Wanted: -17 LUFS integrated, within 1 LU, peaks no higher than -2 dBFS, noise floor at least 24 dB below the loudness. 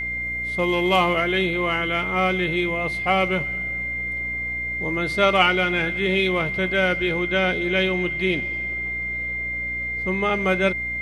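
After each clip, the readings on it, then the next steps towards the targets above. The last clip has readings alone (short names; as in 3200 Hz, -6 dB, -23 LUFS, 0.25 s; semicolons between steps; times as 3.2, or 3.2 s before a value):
hum 60 Hz; harmonics up to 300 Hz; hum level -36 dBFS; steady tone 2100 Hz; tone level -25 dBFS; loudness -22.0 LUFS; peak -2.5 dBFS; loudness target -17.0 LUFS
-> notches 60/120/180/240/300 Hz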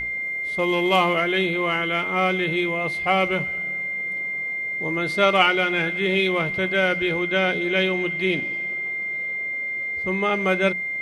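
hum none; steady tone 2100 Hz; tone level -25 dBFS
-> notch 2100 Hz, Q 30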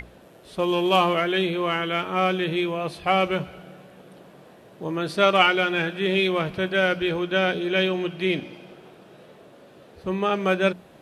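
steady tone none; loudness -23.0 LUFS; peak -3.5 dBFS; loudness target -17.0 LUFS
-> gain +6 dB; limiter -2 dBFS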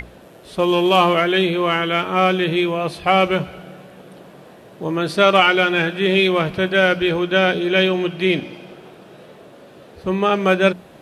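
loudness -17.5 LUFS; peak -2.0 dBFS; noise floor -44 dBFS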